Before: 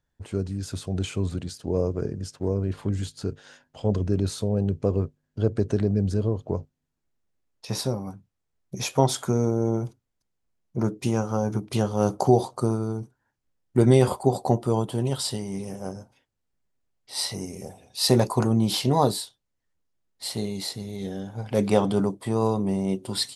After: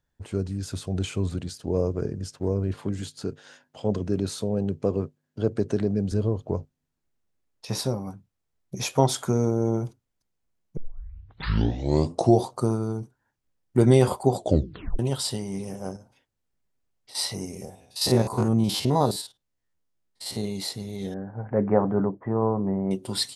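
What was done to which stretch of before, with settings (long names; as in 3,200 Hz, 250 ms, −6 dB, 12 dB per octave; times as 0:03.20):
0:02.74–0:06.12: high-pass filter 130 Hz
0:10.77: tape start 1.65 s
0:14.36: tape stop 0.63 s
0:15.96–0:17.15: downward compressor, threshold −44 dBFS
0:17.65–0:20.44: spectrum averaged block by block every 50 ms
0:21.14–0:22.91: elliptic low-pass filter 1,800 Hz, stop band 60 dB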